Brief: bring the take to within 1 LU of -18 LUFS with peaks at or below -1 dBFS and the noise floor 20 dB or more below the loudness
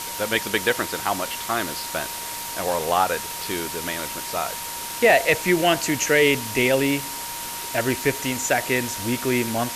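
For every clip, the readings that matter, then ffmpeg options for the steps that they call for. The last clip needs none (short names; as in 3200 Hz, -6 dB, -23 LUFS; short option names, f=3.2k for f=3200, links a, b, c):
steady tone 940 Hz; tone level -36 dBFS; noise floor -32 dBFS; noise floor target -43 dBFS; loudness -22.5 LUFS; peak -6.0 dBFS; loudness target -18.0 LUFS
-> -af "bandreject=f=940:w=30"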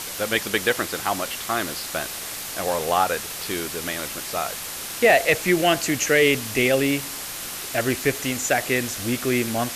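steady tone none; noise floor -33 dBFS; noise floor target -43 dBFS
-> -af "afftdn=nr=10:nf=-33"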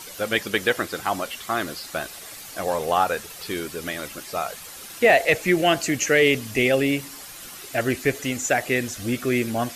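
noise floor -40 dBFS; noise floor target -43 dBFS
-> -af "afftdn=nr=6:nf=-40"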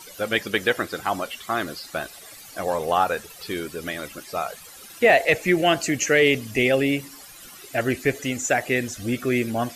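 noise floor -44 dBFS; loudness -23.0 LUFS; peak -6.5 dBFS; loudness target -18.0 LUFS
-> -af "volume=5dB"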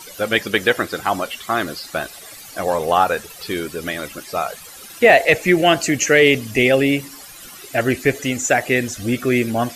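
loudness -18.0 LUFS; peak -1.5 dBFS; noise floor -39 dBFS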